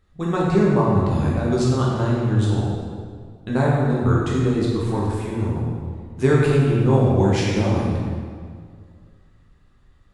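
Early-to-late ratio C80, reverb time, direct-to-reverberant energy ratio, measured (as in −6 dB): 1.0 dB, 2.0 s, −5.5 dB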